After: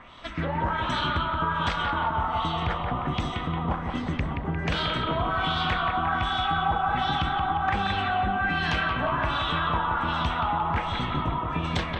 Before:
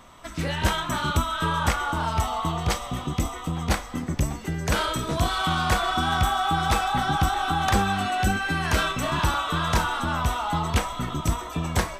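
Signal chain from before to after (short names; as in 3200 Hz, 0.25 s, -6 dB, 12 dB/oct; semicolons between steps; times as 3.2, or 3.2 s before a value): LFO low-pass sine 1.3 Hz 910–3800 Hz; compressor, threshold -24 dBFS, peak gain reduction 9.5 dB; analogue delay 0.176 s, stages 4096, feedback 53%, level -5 dB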